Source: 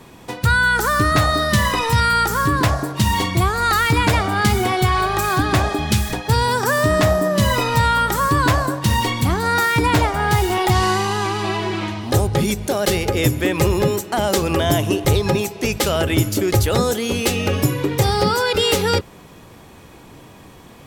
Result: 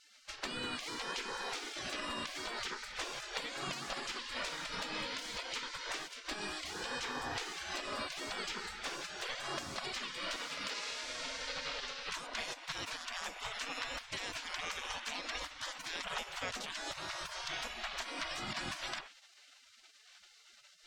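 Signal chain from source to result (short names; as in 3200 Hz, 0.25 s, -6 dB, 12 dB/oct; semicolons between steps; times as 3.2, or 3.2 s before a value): notches 50/100/150/200/250/300/350 Hz; spectral gate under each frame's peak -25 dB weak; 10.36–11.04 low shelf 160 Hz -12 dB; compressor, threshold -37 dBFS, peak gain reduction 12.5 dB; air absorption 140 m; gain +4.5 dB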